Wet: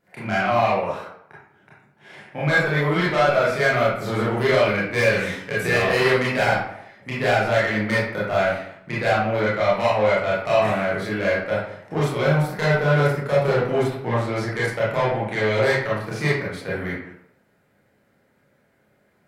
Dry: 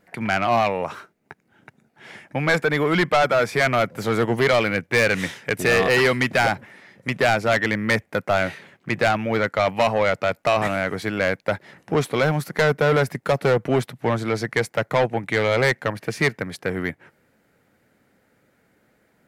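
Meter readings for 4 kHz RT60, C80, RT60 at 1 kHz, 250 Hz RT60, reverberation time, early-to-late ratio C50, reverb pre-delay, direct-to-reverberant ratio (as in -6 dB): 0.45 s, 5.0 dB, 0.75 s, 0.65 s, 0.75 s, 0.0 dB, 24 ms, -8.5 dB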